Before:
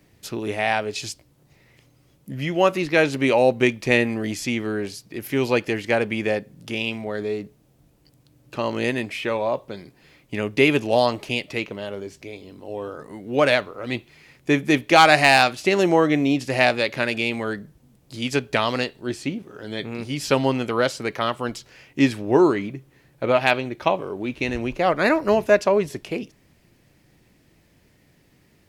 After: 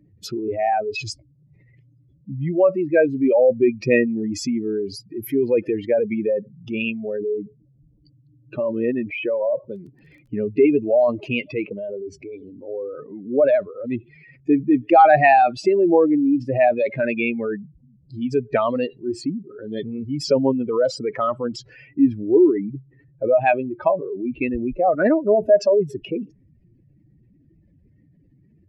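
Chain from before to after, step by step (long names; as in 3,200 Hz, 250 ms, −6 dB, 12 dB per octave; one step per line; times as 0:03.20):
expanding power law on the bin magnitudes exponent 2.7
0:09.70–0:10.36: surface crackle 16 per second −50 dBFS
level +2.5 dB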